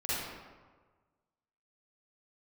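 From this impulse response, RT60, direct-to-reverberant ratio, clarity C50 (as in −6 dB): 1.4 s, −11.5 dB, −6.5 dB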